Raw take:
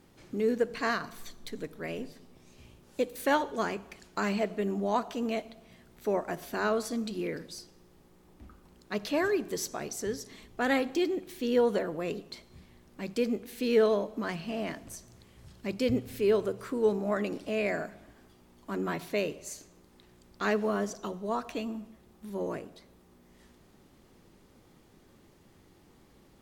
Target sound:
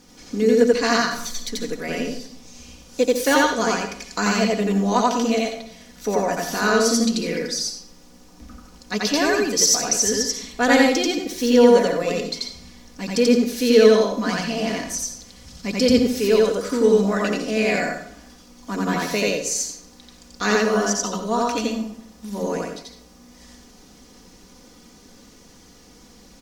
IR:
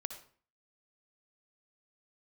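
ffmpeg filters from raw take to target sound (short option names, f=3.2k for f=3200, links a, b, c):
-filter_complex "[0:a]equalizer=f=5.7k:t=o:w=0.87:g=13.5,aecho=1:1:4.1:0.62,asplit=2[a][b];[1:a]atrim=start_sample=2205,adelay=87[c];[b][c]afir=irnorm=-1:irlink=0,volume=2dB[d];[a][d]amix=inputs=2:normalize=0,volume=5.5dB"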